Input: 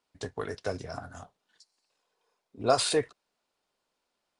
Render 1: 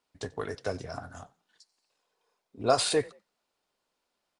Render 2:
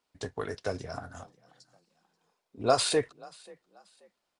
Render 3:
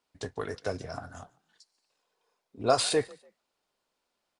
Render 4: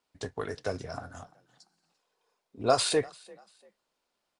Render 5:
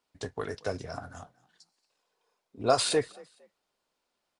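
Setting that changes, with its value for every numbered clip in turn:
echo with shifted repeats, delay time: 90, 534, 145, 343, 229 milliseconds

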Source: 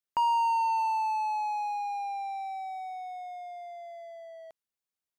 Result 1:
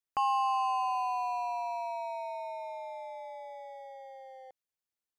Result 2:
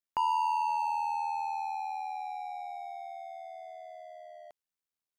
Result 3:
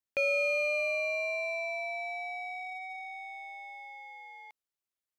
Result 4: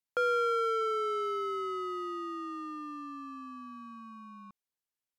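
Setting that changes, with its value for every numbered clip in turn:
ring modulation, frequency: 130, 40, 1,500, 450 Hertz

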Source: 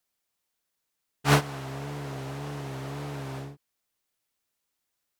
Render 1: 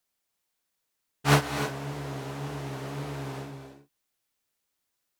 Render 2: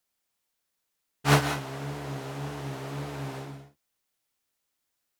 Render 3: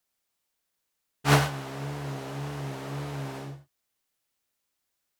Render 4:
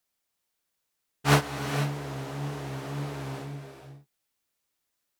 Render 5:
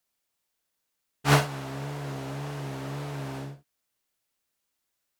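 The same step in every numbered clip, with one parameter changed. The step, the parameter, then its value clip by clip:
reverb whose tail is shaped and stops, gate: 330, 210, 120, 510, 80 milliseconds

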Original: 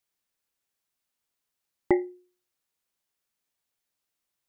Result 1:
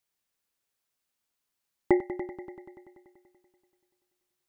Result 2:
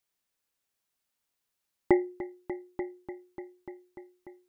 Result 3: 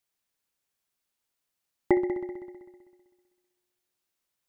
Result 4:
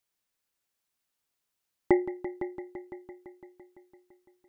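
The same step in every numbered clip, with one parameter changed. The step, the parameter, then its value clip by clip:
echo machine with several playback heads, delay time: 96, 295, 64, 169 milliseconds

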